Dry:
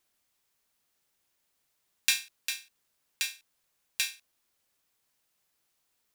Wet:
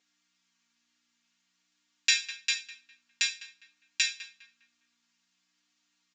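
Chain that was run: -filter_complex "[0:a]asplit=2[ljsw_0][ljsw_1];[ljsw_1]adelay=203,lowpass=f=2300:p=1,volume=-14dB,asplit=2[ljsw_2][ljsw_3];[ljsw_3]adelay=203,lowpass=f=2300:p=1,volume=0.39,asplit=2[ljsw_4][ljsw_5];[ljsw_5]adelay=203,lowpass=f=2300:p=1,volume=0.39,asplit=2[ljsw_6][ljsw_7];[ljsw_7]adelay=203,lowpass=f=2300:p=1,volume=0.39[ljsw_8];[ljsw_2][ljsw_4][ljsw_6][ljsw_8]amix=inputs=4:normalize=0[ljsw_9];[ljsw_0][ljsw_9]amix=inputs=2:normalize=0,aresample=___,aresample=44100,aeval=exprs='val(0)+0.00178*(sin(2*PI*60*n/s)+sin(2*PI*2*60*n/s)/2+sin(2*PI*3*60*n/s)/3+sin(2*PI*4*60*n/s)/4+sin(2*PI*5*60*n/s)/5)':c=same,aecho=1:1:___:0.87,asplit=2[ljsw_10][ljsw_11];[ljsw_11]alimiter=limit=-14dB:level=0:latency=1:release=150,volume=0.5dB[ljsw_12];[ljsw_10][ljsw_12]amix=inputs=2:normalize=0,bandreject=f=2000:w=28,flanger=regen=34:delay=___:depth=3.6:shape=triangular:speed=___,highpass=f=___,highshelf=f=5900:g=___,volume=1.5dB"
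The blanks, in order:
16000, 4.3, 9.5, 0.52, 1400, -3.5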